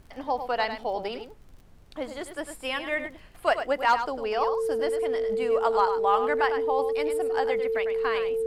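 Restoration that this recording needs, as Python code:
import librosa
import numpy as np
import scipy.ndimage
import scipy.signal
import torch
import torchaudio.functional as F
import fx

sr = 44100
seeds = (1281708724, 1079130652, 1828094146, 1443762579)

y = fx.fix_declick_ar(x, sr, threshold=6.5)
y = fx.notch(y, sr, hz=450.0, q=30.0)
y = fx.noise_reduce(y, sr, print_start_s=1.42, print_end_s=1.92, reduce_db=23.0)
y = fx.fix_echo_inverse(y, sr, delay_ms=101, level_db=-9.0)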